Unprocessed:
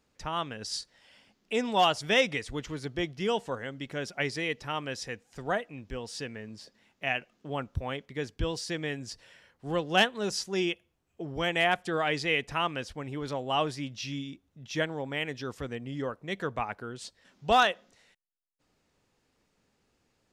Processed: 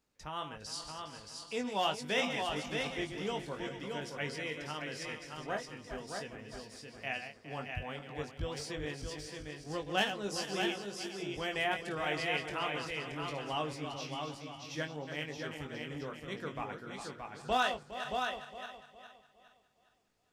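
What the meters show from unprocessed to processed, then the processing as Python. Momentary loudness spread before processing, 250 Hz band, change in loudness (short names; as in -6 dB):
15 LU, -6.0 dB, -6.5 dB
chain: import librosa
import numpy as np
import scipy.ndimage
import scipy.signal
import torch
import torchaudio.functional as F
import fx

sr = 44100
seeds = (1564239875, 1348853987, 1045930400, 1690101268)

y = fx.reverse_delay_fb(x, sr, ms=205, feedback_pct=60, wet_db=-8.5)
y = fx.high_shelf(y, sr, hz=9000.0, db=6.5)
y = fx.doubler(y, sr, ms=20.0, db=-7)
y = y + 10.0 ** (-5.0 / 20.0) * np.pad(y, (int(623 * sr / 1000.0), 0))[:len(y)]
y = y * 10.0 ** (-9.0 / 20.0)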